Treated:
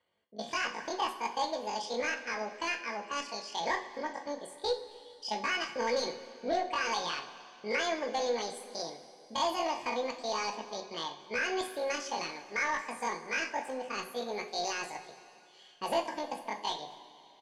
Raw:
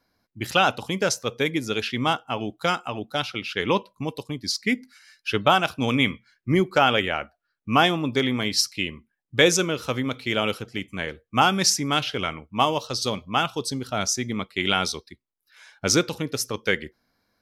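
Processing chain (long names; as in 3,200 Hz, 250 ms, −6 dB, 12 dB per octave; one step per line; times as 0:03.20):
bass and treble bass −6 dB, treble −12 dB
brickwall limiter −11.5 dBFS, peak gain reduction 7 dB
notch comb filter 690 Hz
pitch shifter +11.5 semitones
soft clipping −20 dBFS, distortion −14 dB
high-frequency loss of the air 88 metres
far-end echo of a speakerphone 230 ms, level −23 dB
coupled-rooms reverb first 0.32 s, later 2.9 s, from −17 dB, DRR 3 dB
level −4.5 dB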